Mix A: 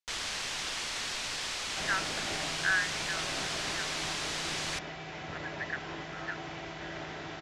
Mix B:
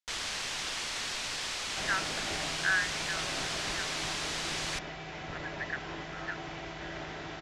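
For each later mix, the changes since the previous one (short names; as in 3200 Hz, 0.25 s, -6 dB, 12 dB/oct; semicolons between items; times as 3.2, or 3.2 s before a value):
second sound: remove HPF 63 Hz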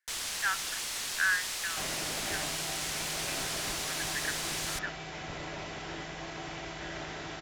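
speech: entry -1.45 s; first sound -4.0 dB; master: remove air absorption 88 m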